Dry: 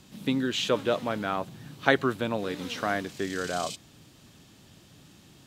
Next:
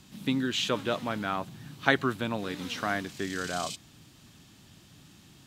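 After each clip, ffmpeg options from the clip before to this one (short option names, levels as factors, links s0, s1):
-af "equalizer=f=500:t=o:w=0.95:g=-6"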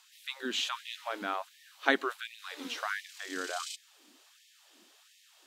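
-af "afftfilt=real='re*gte(b*sr/1024,210*pow(1800/210,0.5+0.5*sin(2*PI*1.4*pts/sr)))':imag='im*gte(b*sr/1024,210*pow(1800/210,0.5+0.5*sin(2*PI*1.4*pts/sr)))':win_size=1024:overlap=0.75,volume=0.75"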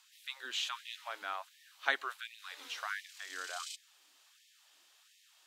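-af "highpass=820,volume=0.668"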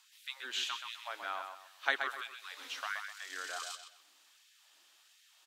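-filter_complex "[0:a]asplit=2[s0][s1];[s1]adelay=127,lowpass=f=4600:p=1,volume=0.501,asplit=2[s2][s3];[s3]adelay=127,lowpass=f=4600:p=1,volume=0.32,asplit=2[s4][s5];[s5]adelay=127,lowpass=f=4600:p=1,volume=0.32,asplit=2[s6][s7];[s7]adelay=127,lowpass=f=4600:p=1,volume=0.32[s8];[s0][s2][s4][s6][s8]amix=inputs=5:normalize=0"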